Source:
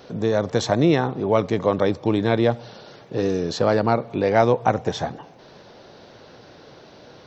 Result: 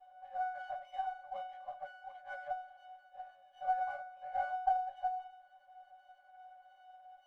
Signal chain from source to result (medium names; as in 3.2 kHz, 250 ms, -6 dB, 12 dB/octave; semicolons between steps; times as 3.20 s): pitch-class resonator F#, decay 0.67 s; compression 3:1, threshold -40 dBFS, peak gain reduction 8 dB; FFT band-pass 530–3300 Hz; reverberation RT60 0.20 s, pre-delay 3 ms, DRR -4 dB; sliding maximum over 3 samples; trim -1 dB